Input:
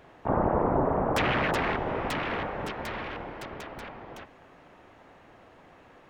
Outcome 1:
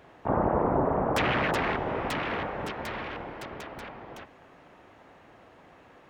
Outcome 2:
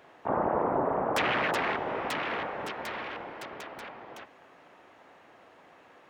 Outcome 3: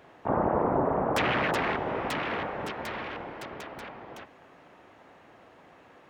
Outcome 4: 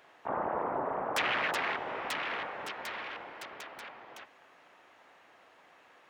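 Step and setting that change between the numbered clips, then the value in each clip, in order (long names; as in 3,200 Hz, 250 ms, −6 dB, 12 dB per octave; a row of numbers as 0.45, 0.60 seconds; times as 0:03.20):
high-pass filter, corner frequency: 41, 390, 130, 1,300 Hertz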